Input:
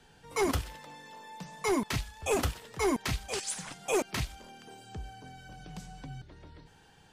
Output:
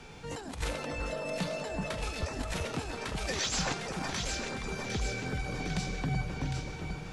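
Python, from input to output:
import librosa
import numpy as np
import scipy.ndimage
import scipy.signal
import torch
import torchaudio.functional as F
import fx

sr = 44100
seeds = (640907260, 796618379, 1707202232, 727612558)

y = fx.over_compress(x, sr, threshold_db=-40.0, ratio=-1.0)
y = fx.formant_shift(y, sr, semitones=-5)
y = np.clip(y, -10.0 ** (-26.0 / 20.0), 10.0 ** (-26.0 / 20.0))
y = fx.echo_alternate(y, sr, ms=378, hz=1500.0, feedback_pct=74, wet_db=-2.5)
y = F.gain(torch.from_numpy(y), 4.5).numpy()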